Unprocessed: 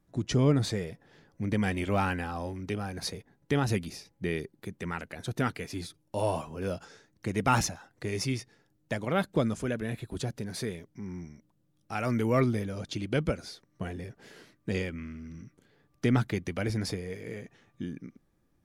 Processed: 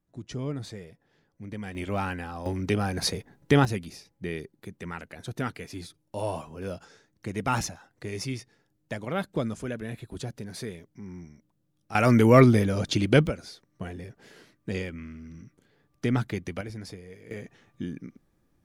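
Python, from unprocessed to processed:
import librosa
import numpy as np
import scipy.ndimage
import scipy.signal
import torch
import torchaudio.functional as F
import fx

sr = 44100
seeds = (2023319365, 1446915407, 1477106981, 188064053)

y = fx.gain(x, sr, db=fx.steps((0.0, -9.0), (1.75, -2.0), (2.46, 7.5), (3.65, -2.0), (11.95, 9.5), (13.27, -0.5), (16.61, -8.0), (17.31, 2.5)))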